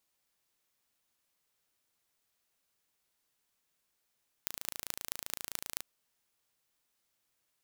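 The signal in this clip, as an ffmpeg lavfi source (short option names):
-f lavfi -i "aevalsrc='0.501*eq(mod(n,1592),0)*(0.5+0.5*eq(mod(n,9552),0))':d=1.35:s=44100"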